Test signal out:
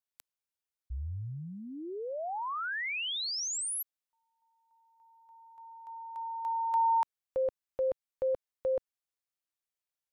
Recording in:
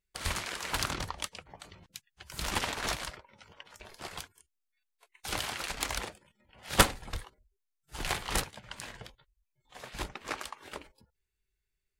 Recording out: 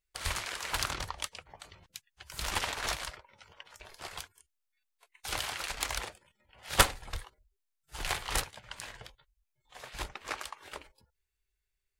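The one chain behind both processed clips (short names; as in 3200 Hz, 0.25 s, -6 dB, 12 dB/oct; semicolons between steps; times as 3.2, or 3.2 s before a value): bell 220 Hz -8.5 dB 1.6 oct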